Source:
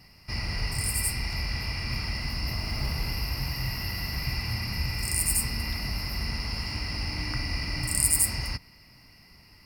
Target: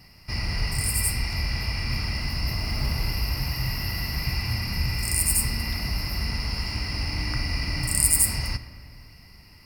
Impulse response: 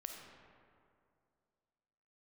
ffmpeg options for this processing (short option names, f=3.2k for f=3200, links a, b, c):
-filter_complex "[0:a]asplit=2[a][b];[1:a]atrim=start_sample=2205,lowshelf=f=150:g=6.5,highshelf=f=9.3k:g=7[c];[b][c]afir=irnorm=-1:irlink=0,volume=-3dB[d];[a][d]amix=inputs=2:normalize=0,volume=-1dB"